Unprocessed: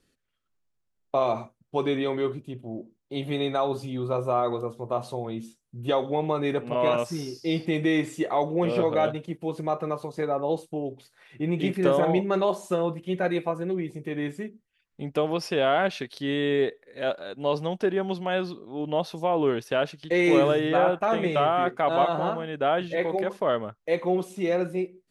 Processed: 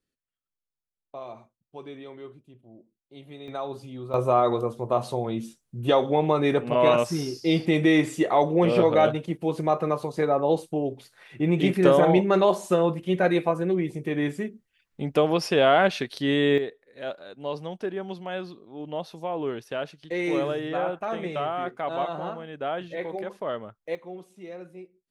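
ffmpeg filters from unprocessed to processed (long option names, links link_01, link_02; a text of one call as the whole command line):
ffmpeg -i in.wav -af "asetnsamples=nb_out_samples=441:pad=0,asendcmd='3.48 volume volume -7dB;4.14 volume volume 4dB;16.58 volume volume -6dB;23.95 volume volume -15dB',volume=-15dB" out.wav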